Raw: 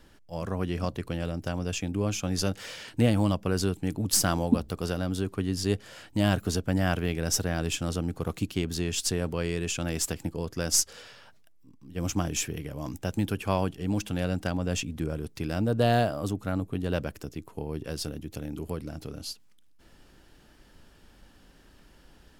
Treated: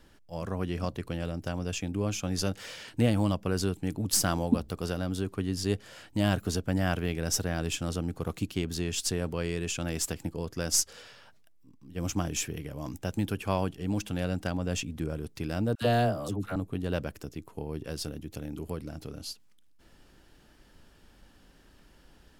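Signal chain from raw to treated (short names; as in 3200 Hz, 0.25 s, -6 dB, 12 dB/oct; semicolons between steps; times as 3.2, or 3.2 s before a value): 15.75–16.56 dispersion lows, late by 69 ms, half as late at 690 Hz; gain -2 dB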